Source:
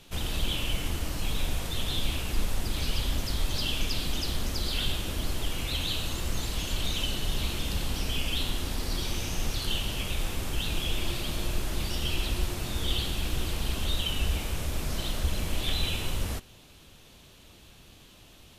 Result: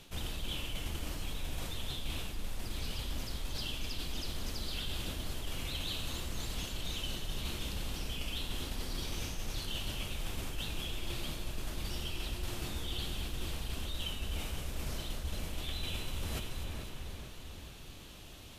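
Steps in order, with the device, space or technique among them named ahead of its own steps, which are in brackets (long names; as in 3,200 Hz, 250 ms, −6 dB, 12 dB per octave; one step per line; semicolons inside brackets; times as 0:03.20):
echo with a time of its own for lows and highs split 2,200 Hz, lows 440 ms, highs 252 ms, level −10.5 dB
compression on the reversed sound (reversed playback; downward compressor 6 to 1, threshold −35 dBFS, peak gain reduction 15 dB; reversed playback)
level +1 dB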